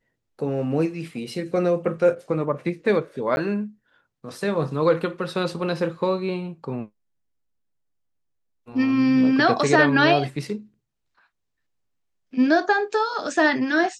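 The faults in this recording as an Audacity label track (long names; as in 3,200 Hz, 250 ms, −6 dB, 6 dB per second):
3.360000	3.370000	drop-out 11 ms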